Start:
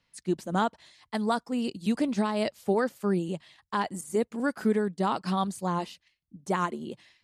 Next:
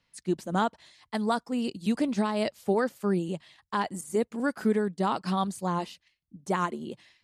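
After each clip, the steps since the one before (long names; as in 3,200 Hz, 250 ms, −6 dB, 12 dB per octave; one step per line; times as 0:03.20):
no processing that can be heard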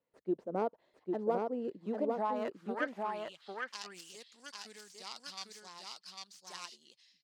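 stylus tracing distortion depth 0.2 ms
band-pass filter sweep 470 Hz → 5,200 Hz, 0:01.85–0:03.61
single-tap delay 800 ms −3 dB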